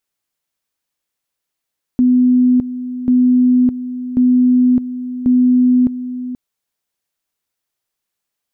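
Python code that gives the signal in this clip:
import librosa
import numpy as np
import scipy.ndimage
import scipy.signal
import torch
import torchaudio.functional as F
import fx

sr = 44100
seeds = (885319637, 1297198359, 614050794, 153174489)

y = fx.two_level_tone(sr, hz=250.0, level_db=-8.0, drop_db=13.0, high_s=0.61, low_s=0.48, rounds=4)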